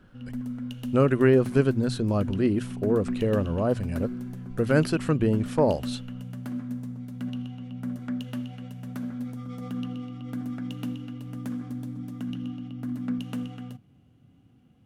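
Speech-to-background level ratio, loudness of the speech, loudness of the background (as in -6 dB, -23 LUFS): 10.0 dB, -25.0 LUFS, -35.0 LUFS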